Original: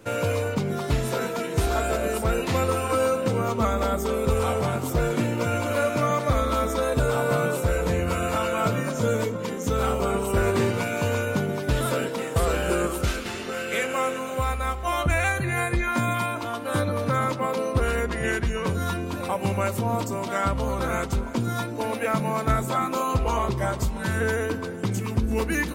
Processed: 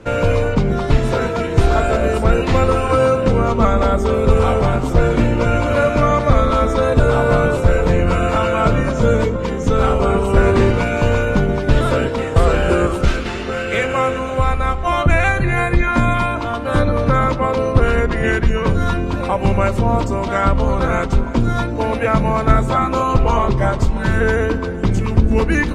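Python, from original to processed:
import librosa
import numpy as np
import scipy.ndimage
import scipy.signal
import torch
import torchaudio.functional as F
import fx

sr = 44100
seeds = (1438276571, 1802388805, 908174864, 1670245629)

y = fx.octave_divider(x, sr, octaves=2, level_db=-1.0)
y = scipy.signal.sosfilt(scipy.signal.butter(2, 8200.0, 'lowpass', fs=sr, output='sos'), y)
y = fx.high_shelf(y, sr, hz=4800.0, db=-10.5)
y = y * 10.0 ** (8.5 / 20.0)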